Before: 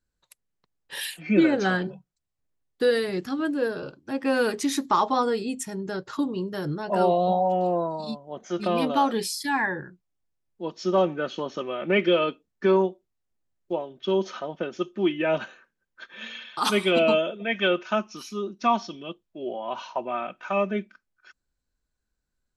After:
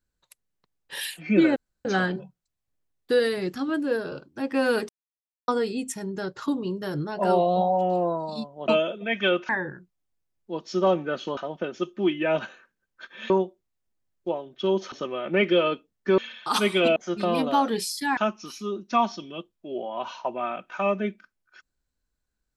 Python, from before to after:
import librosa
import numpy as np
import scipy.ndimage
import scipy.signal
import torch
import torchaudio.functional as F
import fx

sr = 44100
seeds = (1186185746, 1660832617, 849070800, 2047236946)

y = fx.edit(x, sr, fx.insert_room_tone(at_s=1.56, length_s=0.29),
    fx.silence(start_s=4.6, length_s=0.59),
    fx.swap(start_s=8.39, length_s=1.21, other_s=17.07, other_length_s=0.81),
    fx.swap(start_s=11.48, length_s=1.26, other_s=14.36, other_length_s=1.93), tone=tone)